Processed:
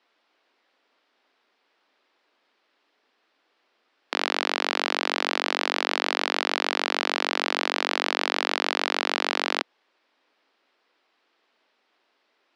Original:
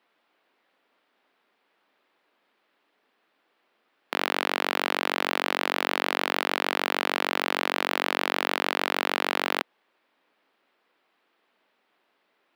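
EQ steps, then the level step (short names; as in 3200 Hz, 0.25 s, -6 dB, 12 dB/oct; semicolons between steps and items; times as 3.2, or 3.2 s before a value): HPF 220 Hz 24 dB/oct; LPF 7400 Hz 12 dB/oct; bell 5300 Hz +8 dB 0.95 oct; 0.0 dB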